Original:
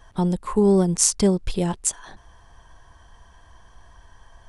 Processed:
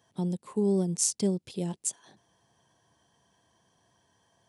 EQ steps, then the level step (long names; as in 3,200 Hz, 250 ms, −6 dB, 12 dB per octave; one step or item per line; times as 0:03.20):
high-pass filter 130 Hz 24 dB per octave
parametric band 1,300 Hz −11.5 dB 1.6 octaves
−7.5 dB